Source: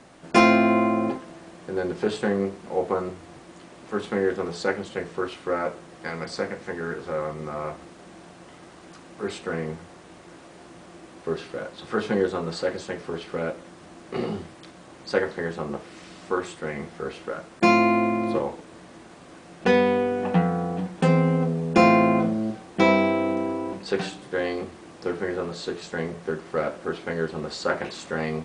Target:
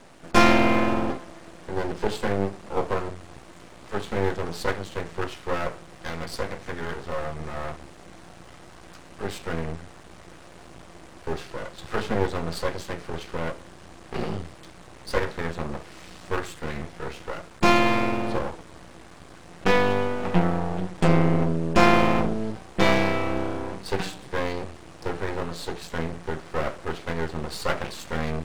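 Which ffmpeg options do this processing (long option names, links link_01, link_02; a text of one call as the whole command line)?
ffmpeg -i in.wav -af "asubboost=boost=4:cutoff=110,aeval=exprs='max(val(0),0)':channel_layout=same,volume=4dB" out.wav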